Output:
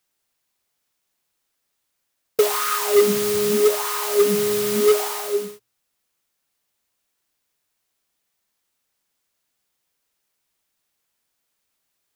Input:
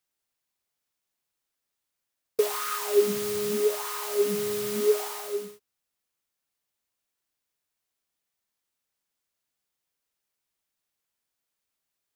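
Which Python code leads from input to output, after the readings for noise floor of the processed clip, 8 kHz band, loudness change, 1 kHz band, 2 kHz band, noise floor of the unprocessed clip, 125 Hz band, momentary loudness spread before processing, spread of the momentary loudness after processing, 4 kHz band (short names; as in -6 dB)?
-76 dBFS, +8.5 dB, +7.5 dB, +9.0 dB, +8.5 dB, -84 dBFS, +8.0 dB, 10 LU, 9 LU, +8.5 dB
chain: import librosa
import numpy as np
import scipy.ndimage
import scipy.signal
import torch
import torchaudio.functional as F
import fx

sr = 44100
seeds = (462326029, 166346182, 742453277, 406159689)

p1 = (np.mod(10.0 ** (16.5 / 20.0) * x + 1.0, 2.0) - 1.0) / 10.0 ** (16.5 / 20.0)
p2 = x + F.gain(torch.from_numpy(p1), -8.5).numpy()
p3 = fx.hum_notches(p2, sr, base_hz=60, count=2)
y = F.gain(torch.from_numpy(p3), 5.5).numpy()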